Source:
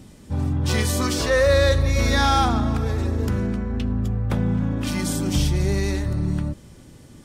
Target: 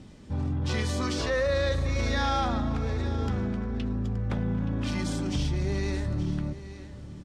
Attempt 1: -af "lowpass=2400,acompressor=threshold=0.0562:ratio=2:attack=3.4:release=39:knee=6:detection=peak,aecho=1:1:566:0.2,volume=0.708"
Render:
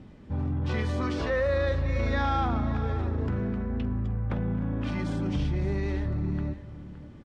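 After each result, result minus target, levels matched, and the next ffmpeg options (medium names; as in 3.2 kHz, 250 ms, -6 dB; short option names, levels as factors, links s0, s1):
4 kHz band -7.5 dB; echo 307 ms early
-af "lowpass=5600,acompressor=threshold=0.0562:ratio=2:attack=3.4:release=39:knee=6:detection=peak,aecho=1:1:566:0.2,volume=0.708"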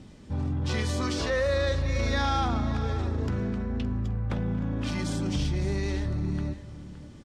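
echo 307 ms early
-af "lowpass=5600,acompressor=threshold=0.0562:ratio=2:attack=3.4:release=39:knee=6:detection=peak,aecho=1:1:873:0.2,volume=0.708"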